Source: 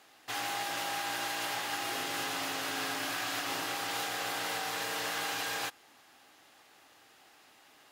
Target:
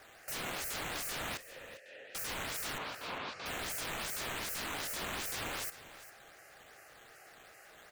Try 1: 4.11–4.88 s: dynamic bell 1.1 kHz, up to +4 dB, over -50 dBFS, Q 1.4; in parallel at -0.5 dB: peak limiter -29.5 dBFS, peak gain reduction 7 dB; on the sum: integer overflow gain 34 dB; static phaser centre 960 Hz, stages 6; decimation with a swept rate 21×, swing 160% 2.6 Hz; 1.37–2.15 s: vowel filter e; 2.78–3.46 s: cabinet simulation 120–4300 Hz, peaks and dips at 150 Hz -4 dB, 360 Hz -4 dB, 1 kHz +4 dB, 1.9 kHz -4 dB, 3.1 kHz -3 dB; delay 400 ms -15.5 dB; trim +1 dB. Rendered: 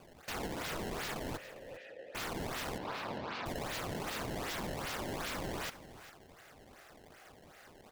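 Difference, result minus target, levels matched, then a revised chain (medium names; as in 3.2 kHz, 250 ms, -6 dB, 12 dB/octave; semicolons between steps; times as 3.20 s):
decimation with a swept rate: distortion +13 dB
4.11–4.88 s: dynamic bell 1.1 kHz, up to +4 dB, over -50 dBFS, Q 1.4; in parallel at -0.5 dB: peak limiter -29.5 dBFS, peak gain reduction 7 dB; on the sum: integer overflow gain 34 dB; static phaser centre 960 Hz, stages 6; decimation with a swept rate 5×, swing 160% 2.6 Hz; 1.37–2.15 s: vowel filter e; 2.78–3.46 s: cabinet simulation 120–4300 Hz, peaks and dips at 150 Hz -4 dB, 360 Hz -4 dB, 1 kHz +4 dB, 1.9 kHz -4 dB, 3.1 kHz -3 dB; delay 400 ms -15.5 dB; trim +1 dB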